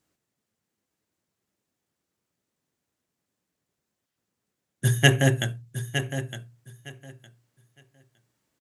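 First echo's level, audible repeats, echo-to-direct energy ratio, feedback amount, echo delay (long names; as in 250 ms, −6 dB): −10.0 dB, 2, −10.0 dB, 18%, 911 ms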